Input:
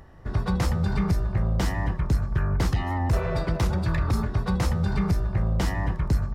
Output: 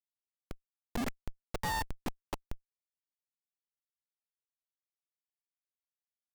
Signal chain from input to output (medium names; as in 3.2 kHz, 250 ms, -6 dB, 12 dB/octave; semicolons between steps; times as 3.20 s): formants replaced by sine waves; Doppler pass-by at 1.59 s, 12 m/s, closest 4.1 m; high-pass 240 Hz 24 dB/octave; Schmitt trigger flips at -22.5 dBFS; trim +1 dB